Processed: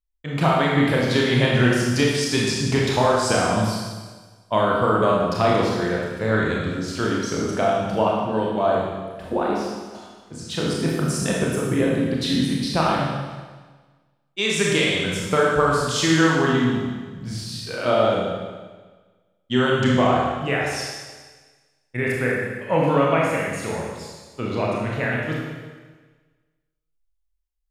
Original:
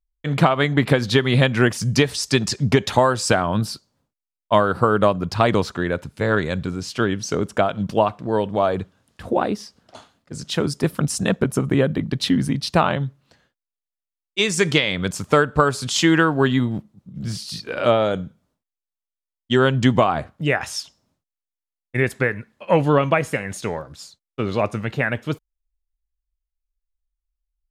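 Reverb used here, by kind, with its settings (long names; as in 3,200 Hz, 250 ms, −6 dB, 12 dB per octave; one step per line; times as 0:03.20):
four-comb reverb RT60 1.4 s, combs from 25 ms, DRR −4 dB
level −6 dB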